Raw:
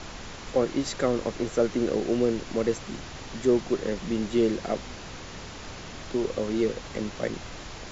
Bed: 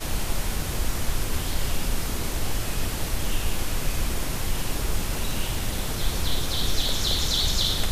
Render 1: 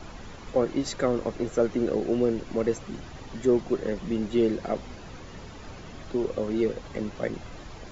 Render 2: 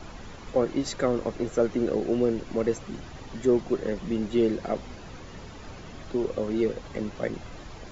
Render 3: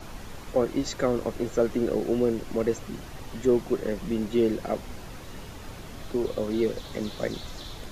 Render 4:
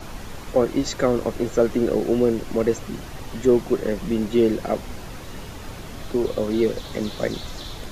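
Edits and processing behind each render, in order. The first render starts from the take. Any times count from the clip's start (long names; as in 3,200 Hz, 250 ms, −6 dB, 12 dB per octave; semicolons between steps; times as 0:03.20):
broadband denoise 9 dB, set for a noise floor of −41 dBFS
no processing that can be heard
mix in bed −19.5 dB
level +5 dB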